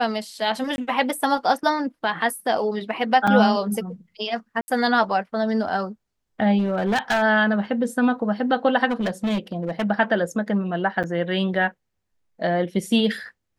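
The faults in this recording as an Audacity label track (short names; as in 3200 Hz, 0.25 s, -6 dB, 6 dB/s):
0.760000	0.780000	gap 21 ms
3.270000	3.280000	gap 5.6 ms
4.610000	4.680000	gap 70 ms
6.580000	7.230000	clipped -17.5 dBFS
8.900000	9.850000	clipped -19.5 dBFS
11.030000	11.040000	gap 7.5 ms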